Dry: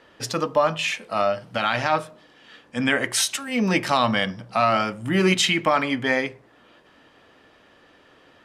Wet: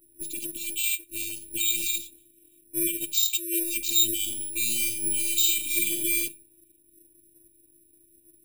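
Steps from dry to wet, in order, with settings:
low-pass that shuts in the quiet parts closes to 510 Hz, open at −17.5 dBFS
brick-wall band-stop 280–2,300 Hz
dynamic equaliser 4,800 Hz, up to +4 dB, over −41 dBFS, Q 1.3
downward compressor 1.5 to 1, threshold −39 dBFS, peak gain reduction 8.5 dB
brickwall limiter −25 dBFS, peak gain reduction 9.5 dB
hollow resonant body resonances 2,100/3,800 Hz, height 18 dB, ringing for 35 ms
phases set to zero 340 Hz
0:04.16–0:06.28: reverse bouncing-ball delay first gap 40 ms, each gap 1.1×, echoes 5
bad sample-rate conversion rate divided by 4×, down filtered, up zero stuff
level +3 dB

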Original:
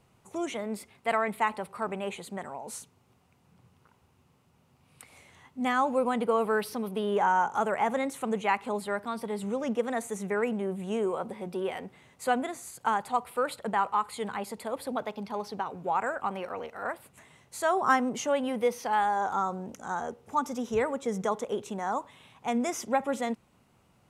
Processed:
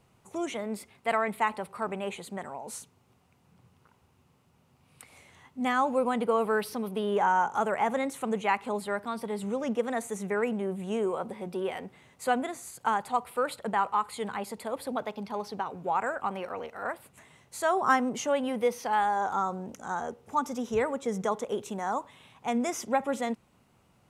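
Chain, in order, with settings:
0:21.50–0:21.95: high-shelf EQ 9,000 Hz +5.5 dB

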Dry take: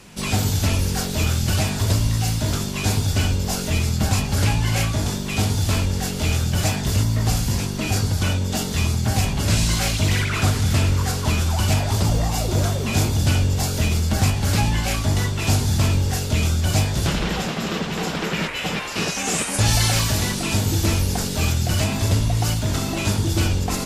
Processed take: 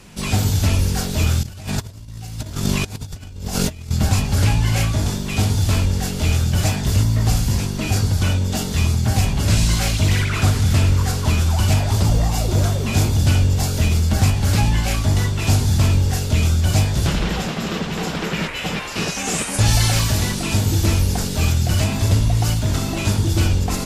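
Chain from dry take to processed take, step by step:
low-shelf EQ 120 Hz +5.5 dB
0:01.43–0:03.91: compressor whose output falls as the input rises −25 dBFS, ratio −0.5

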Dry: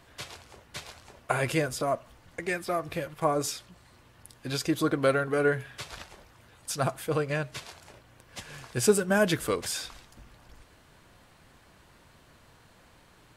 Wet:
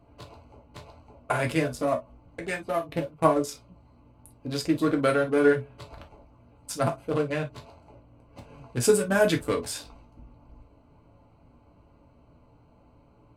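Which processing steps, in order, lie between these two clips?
adaptive Wiener filter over 25 samples
0:02.72–0:03.51: transient designer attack +6 dB, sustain −6 dB
reverb whose tail is shaped and stops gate 80 ms falling, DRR 1.5 dB

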